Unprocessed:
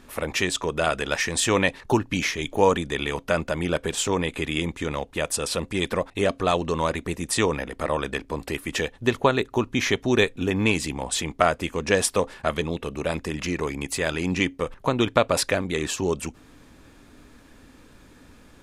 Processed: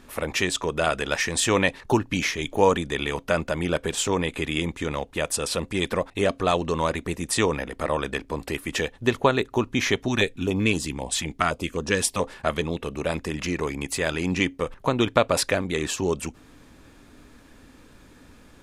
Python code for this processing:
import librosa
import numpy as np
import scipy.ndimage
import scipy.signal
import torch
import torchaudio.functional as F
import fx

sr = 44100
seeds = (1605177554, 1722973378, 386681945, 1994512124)

y = fx.filter_held_notch(x, sr, hz=7.7, low_hz=430.0, high_hz=2200.0, at=(10.08, 12.2))